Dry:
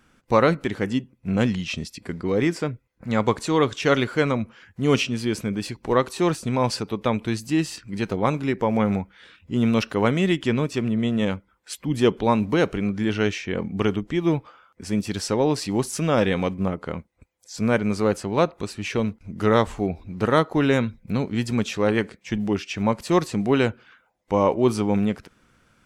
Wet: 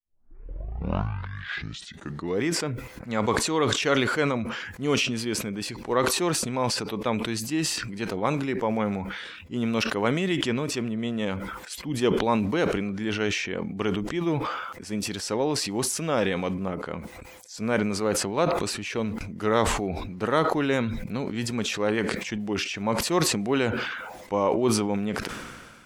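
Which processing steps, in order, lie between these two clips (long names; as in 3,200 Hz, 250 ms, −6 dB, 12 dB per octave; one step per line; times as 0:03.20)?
turntable start at the beginning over 2.47 s
low-shelf EQ 180 Hz −8.5 dB
level that may fall only so fast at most 35 dB per second
level −3.5 dB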